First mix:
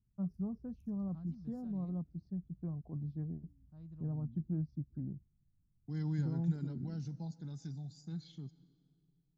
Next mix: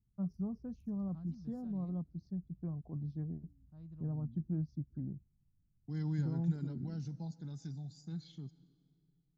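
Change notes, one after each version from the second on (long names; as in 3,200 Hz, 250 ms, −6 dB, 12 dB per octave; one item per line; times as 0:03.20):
first voice: remove high-frequency loss of the air 180 metres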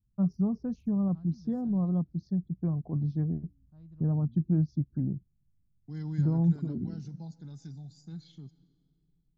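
first voice +10.5 dB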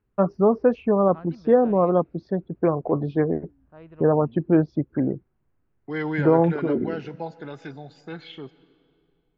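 master: remove drawn EQ curve 180 Hz 0 dB, 480 Hz −27 dB, 720 Hz −22 dB, 2,700 Hz −30 dB, 4,000 Hz −9 dB, 6,100 Hz +3 dB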